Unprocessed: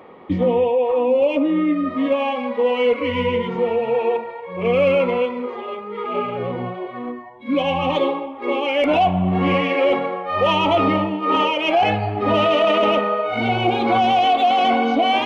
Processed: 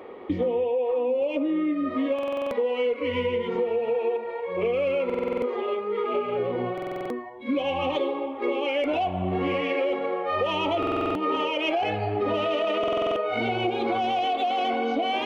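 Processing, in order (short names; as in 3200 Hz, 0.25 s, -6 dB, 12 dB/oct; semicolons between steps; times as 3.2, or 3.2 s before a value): fifteen-band EQ 160 Hz -11 dB, 400 Hz +6 dB, 1000 Hz -3 dB; compressor 6:1, threshold -23 dBFS, peak gain reduction 12 dB; stuck buffer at 2.14/5.05/6.73/10.78/12.79, samples 2048, times 7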